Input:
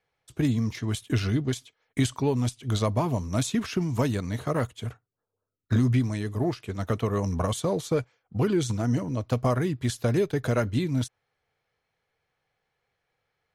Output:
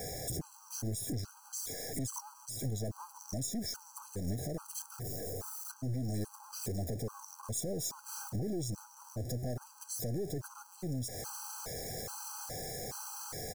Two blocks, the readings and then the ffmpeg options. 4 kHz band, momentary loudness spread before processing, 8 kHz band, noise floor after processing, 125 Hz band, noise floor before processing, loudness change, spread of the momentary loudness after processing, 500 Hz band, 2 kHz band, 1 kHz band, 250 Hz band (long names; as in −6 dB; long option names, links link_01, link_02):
−7.0 dB, 6 LU, +1.0 dB, −57 dBFS, −12.5 dB, −83 dBFS, −12.0 dB, 6 LU, −13.5 dB, −15.5 dB, −13.0 dB, −14.0 dB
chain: -af "aeval=exprs='val(0)+0.5*0.0316*sgn(val(0))':channel_layout=same,aeval=exprs='(tanh(11.2*val(0)+0.5)-tanh(0.5))/11.2':channel_layout=same,alimiter=level_in=5dB:limit=-24dB:level=0:latency=1:release=159,volume=-5dB,firequalizer=gain_entry='entry(590,0);entry(2800,-21);entry(5400,6)':delay=0.05:min_phase=1,afftfilt=real='re*gt(sin(2*PI*1.2*pts/sr)*(1-2*mod(floor(b*sr/1024/810),2)),0)':imag='im*gt(sin(2*PI*1.2*pts/sr)*(1-2*mod(floor(b*sr/1024/810),2)),0)':win_size=1024:overlap=0.75"